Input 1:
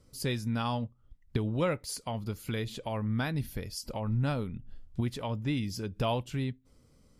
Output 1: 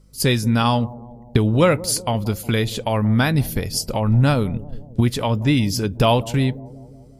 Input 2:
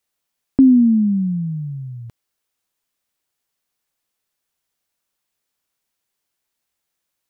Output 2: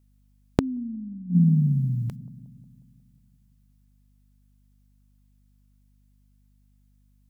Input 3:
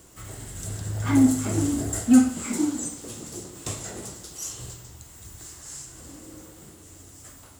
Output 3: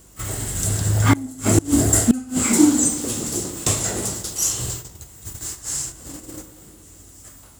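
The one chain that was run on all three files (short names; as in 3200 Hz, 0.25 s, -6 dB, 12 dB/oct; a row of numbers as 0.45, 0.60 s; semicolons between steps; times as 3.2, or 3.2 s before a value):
gate -42 dBFS, range -11 dB; high shelf 6400 Hz +5 dB; analogue delay 0.18 s, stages 1024, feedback 61%, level -18 dB; flipped gate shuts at -13 dBFS, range -25 dB; hum 50 Hz, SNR 32 dB; normalise peaks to -2 dBFS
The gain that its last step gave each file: +13.5, +5.5, +10.5 dB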